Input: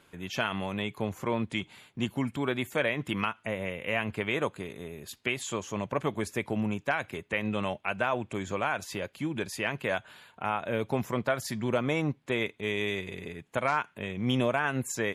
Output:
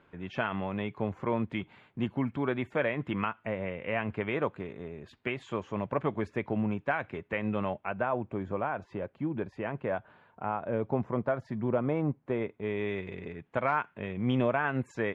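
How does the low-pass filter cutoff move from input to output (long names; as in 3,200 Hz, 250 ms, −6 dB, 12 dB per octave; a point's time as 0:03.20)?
0:07.48 1,900 Hz
0:08.22 1,100 Hz
0:12.48 1,100 Hz
0:13.09 2,000 Hz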